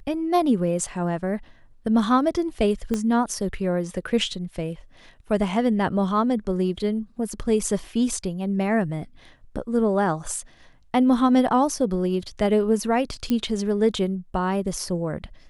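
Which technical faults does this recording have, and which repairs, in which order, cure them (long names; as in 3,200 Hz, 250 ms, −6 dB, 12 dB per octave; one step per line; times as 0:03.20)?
0:02.94: click −13 dBFS
0:13.30: click −12 dBFS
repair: click removal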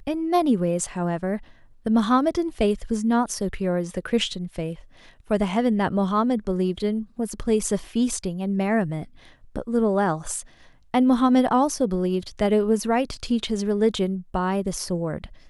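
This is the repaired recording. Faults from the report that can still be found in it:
0:02.94: click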